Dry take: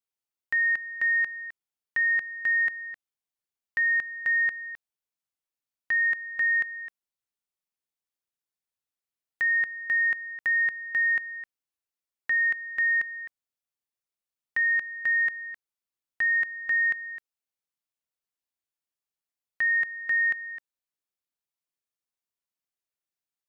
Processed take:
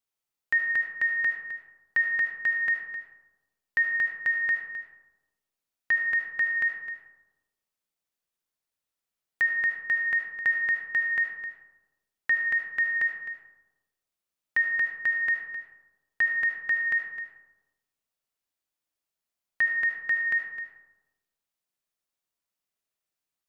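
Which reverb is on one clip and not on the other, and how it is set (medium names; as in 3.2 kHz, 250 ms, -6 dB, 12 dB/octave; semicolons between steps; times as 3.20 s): algorithmic reverb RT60 1.1 s, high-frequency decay 0.35×, pre-delay 35 ms, DRR 3.5 dB; trim +2.5 dB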